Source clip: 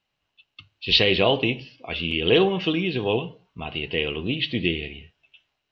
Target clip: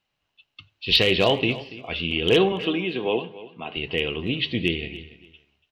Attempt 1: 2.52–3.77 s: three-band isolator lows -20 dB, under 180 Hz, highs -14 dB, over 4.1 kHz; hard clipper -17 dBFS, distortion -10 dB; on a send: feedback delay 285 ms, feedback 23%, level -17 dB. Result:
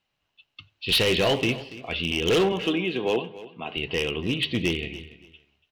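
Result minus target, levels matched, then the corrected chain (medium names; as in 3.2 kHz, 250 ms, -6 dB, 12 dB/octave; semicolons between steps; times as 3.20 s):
hard clipper: distortion +17 dB
2.52–3.77 s: three-band isolator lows -20 dB, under 180 Hz, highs -14 dB, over 4.1 kHz; hard clipper -8.5 dBFS, distortion -27 dB; on a send: feedback delay 285 ms, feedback 23%, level -17 dB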